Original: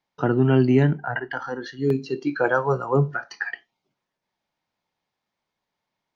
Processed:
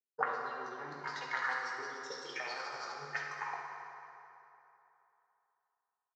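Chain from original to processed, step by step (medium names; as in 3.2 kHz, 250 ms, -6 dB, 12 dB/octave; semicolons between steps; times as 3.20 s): companding laws mixed up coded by A; high-pass 150 Hz 12 dB/octave; high-order bell 2.1 kHz -15.5 dB 1 oct; compressor with a negative ratio -25 dBFS, ratio -0.5; formant shift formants +5 st; auto-wah 390–4700 Hz, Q 4.8, up, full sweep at -23 dBFS; reverberation RT60 3.1 s, pre-delay 3 ms, DRR -2.5 dB; resampled via 16 kHz; trim +6.5 dB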